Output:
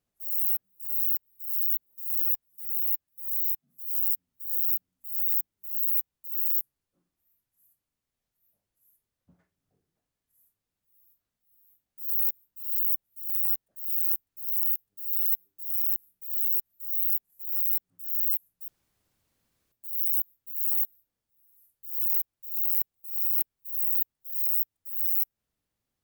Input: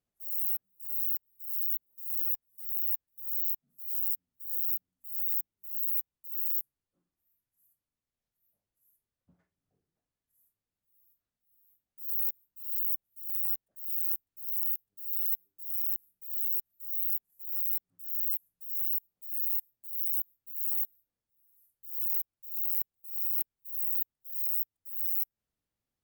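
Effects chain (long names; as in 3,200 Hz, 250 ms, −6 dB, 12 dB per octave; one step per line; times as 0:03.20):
0:02.48–0:03.95: notch comb filter 470 Hz
0:18.68–0:19.72: fill with room tone
level +4.5 dB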